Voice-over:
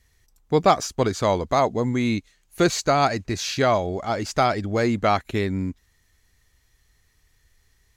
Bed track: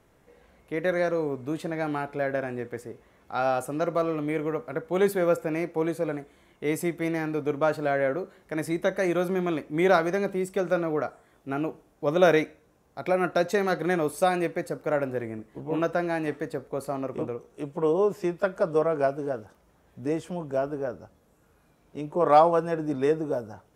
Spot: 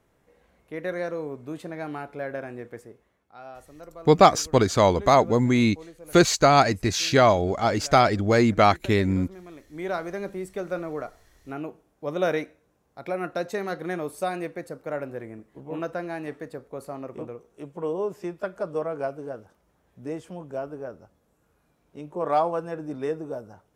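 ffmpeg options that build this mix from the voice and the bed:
ffmpeg -i stem1.wav -i stem2.wav -filter_complex "[0:a]adelay=3550,volume=2.5dB[link_01];[1:a]volume=8dB,afade=type=out:start_time=2.75:duration=0.55:silence=0.223872,afade=type=in:start_time=9.51:duration=0.76:silence=0.237137[link_02];[link_01][link_02]amix=inputs=2:normalize=0" out.wav

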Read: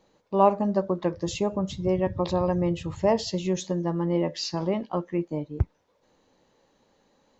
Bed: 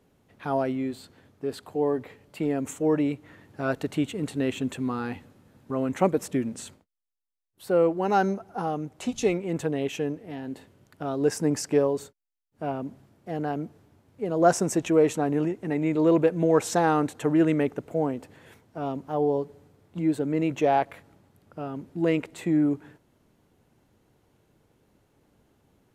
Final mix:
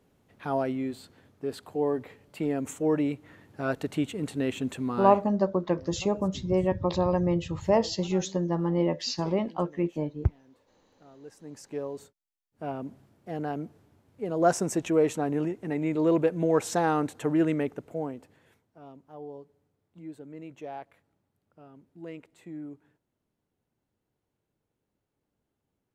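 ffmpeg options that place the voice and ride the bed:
ffmpeg -i stem1.wav -i stem2.wav -filter_complex "[0:a]adelay=4650,volume=-0.5dB[link_01];[1:a]volume=18.5dB,afade=type=out:start_time=5.08:duration=0.32:silence=0.0841395,afade=type=in:start_time=11.4:duration=1.47:silence=0.0944061,afade=type=out:start_time=17.4:duration=1.39:silence=0.188365[link_02];[link_01][link_02]amix=inputs=2:normalize=0" out.wav

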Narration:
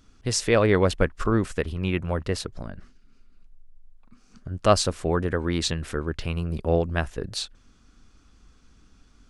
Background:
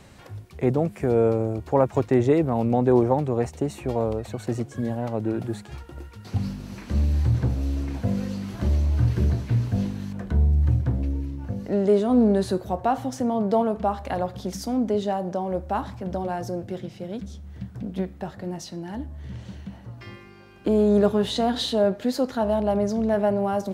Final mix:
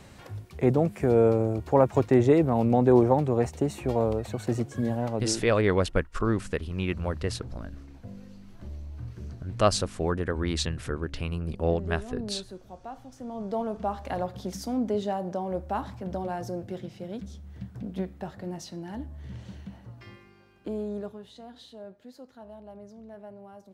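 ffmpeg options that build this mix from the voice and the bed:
ffmpeg -i stem1.wav -i stem2.wav -filter_complex "[0:a]adelay=4950,volume=-3.5dB[link_01];[1:a]volume=13.5dB,afade=type=out:start_time=5.03:duration=0.53:silence=0.133352,afade=type=in:start_time=13.12:duration=0.98:silence=0.199526,afade=type=out:start_time=19.6:duration=1.62:silence=0.112202[link_02];[link_01][link_02]amix=inputs=2:normalize=0" out.wav

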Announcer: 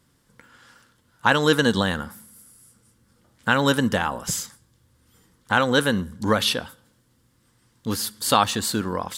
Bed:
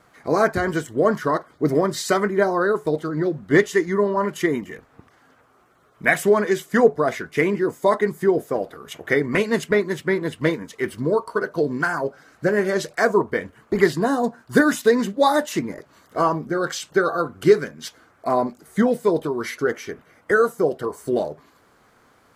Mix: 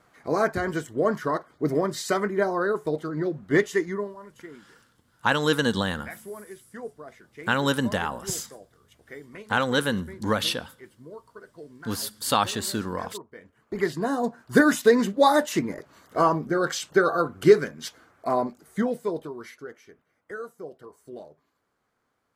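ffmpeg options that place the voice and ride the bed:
ffmpeg -i stem1.wav -i stem2.wav -filter_complex "[0:a]adelay=4000,volume=-4dB[link_01];[1:a]volume=16.5dB,afade=type=out:start_time=3.83:duration=0.32:silence=0.133352,afade=type=in:start_time=13.35:duration=1.35:silence=0.0841395,afade=type=out:start_time=17.69:duration=2:silence=0.125893[link_02];[link_01][link_02]amix=inputs=2:normalize=0" out.wav

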